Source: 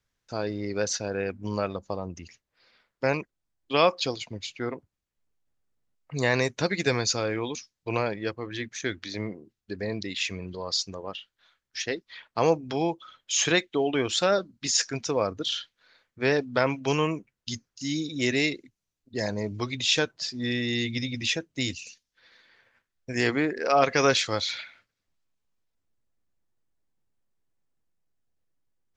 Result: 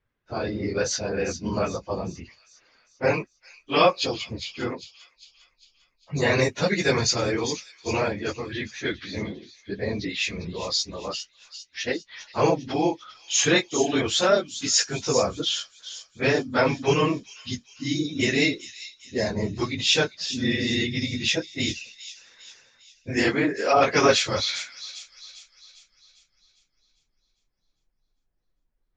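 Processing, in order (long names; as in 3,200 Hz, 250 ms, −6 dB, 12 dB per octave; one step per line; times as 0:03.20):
random phases in long frames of 50 ms
low-pass that shuts in the quiet parts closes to 2,300 Hz, open at −22 dBFS
delay with a high-pass on its return 401 ms, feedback 49%, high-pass 4,400 Hz, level −7.5 dB
level +3 dB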